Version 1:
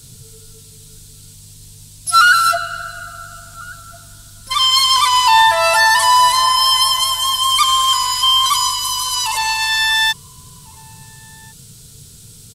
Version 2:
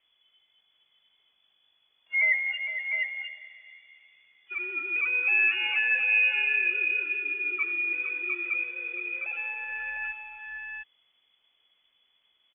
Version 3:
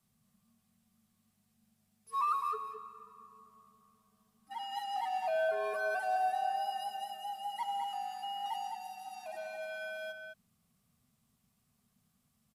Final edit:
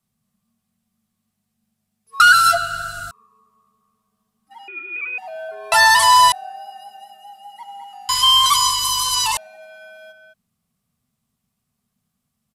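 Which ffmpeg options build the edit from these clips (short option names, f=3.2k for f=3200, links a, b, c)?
-filter_complex "[0:a]asplit=3[a][b][c];[2:a]asplit=5[d][e][f][g][h];[d]atrim=end=2.202[i];[a]atrim=start=2.198:end=3.112[j];[e]atrim=start=3.108:end=4.682[k];[1:a]atrim=start=4.678:end=5.182[l];[f]atrim=start=5.178:end=5.722[m];[b]atrim=start=5.718:end=6.322[n];[g]atrim=start=6.318:end=8.092[o];[c]atrim=start=8.088:end=9.372[p];[h]atrim=start=9.368[q];[i][j]acrossfade=d=0.004:c1=hsin:c2=hsin[r];[r][k]acrossfade=d=0.004:c1=hsin:c2=hsin[s];[s][l]acrossfade=d=0.004:c1=hsin:c2=hsin[t];[t][m]acrossfade=d=0.004:c1=hsin:c2=hsin[u];[u][n]acrossfade=d=0.004:c1=hsin:c2=hsin[v];[v][o]acrossfade=d=0.004:c1=hsin:c2=hsin[w];[w][p]acrossfade=d=0.004:c1=hsin:c2=hsin[x];[x][q]acrossfade=d=0.004:c1=hsin:c2=hsin"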